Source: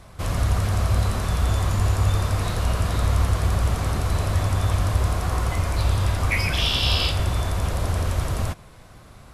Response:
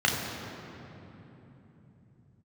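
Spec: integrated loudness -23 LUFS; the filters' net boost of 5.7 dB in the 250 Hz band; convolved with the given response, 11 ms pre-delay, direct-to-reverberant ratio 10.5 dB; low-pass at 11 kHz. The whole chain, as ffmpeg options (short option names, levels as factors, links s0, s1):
-filter_complex "[0:a]lowpass=11000,equalizer=f=250:t=o:g=8,asplit=2[s0][s1];[1:a]atrim=start_sample=2205,adelay=11[s2];[s1][s2]afir=irnorm=-1:irlink=0,volume=0.0562[s3];[s0][s3]amix=inputs=2:normalize=0,volume=0.841"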